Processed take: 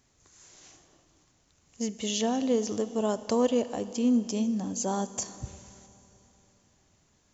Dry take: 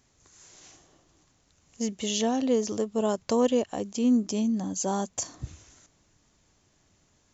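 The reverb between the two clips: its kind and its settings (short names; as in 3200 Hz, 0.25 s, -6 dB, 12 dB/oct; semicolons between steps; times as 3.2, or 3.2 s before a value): Schroeder reverb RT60 3.4 s, combs from 26 ms, DRR 13.5 dB; gain -1.5 dB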